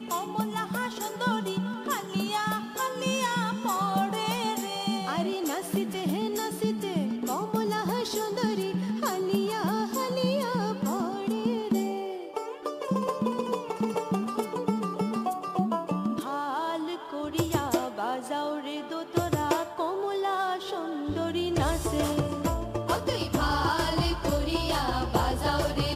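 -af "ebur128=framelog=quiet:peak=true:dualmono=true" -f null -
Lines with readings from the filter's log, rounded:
Integrated loudness:
  I:         -26.2 LUFS
  Threshold: -36.2 LUFS
Loudness range:
  LRA:         2.5 LU
  Threshold: -46.3 LUFS
  LRA low:   -27.4 LUFS
  LRA high:  -24.8 LUFS
True peak:
  Peak:      -11.9 dBFS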